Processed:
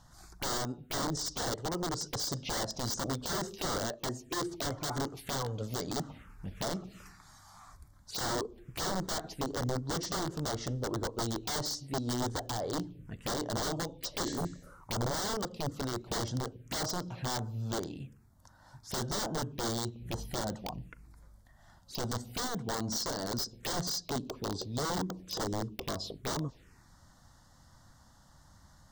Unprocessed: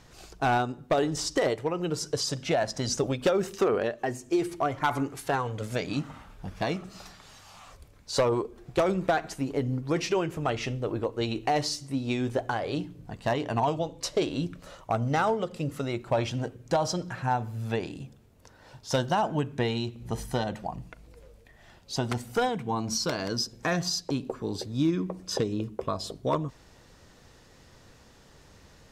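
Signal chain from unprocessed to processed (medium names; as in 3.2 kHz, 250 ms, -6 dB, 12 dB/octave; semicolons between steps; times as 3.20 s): integer overflow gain 23.5 dB; touch-sensitive phaser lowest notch 370 Hz, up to 2.5 kHz, full sweep at -29 dBFS; spectral replace 14.29–14.80 s, 1.6–8.3 kHz both; trim -2.5 dB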